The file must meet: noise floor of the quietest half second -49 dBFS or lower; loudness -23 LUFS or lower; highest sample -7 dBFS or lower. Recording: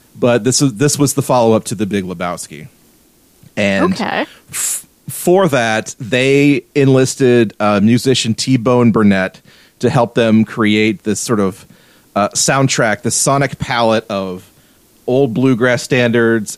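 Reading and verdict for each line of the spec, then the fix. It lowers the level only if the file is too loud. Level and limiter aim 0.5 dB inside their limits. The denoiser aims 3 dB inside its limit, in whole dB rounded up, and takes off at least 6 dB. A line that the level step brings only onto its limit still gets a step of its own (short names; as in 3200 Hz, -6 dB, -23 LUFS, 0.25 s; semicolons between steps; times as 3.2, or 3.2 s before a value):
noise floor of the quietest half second -50 dBFS: OK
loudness -13.5 LUFS: fail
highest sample -1.5 dBFS: fail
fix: gain -10 dB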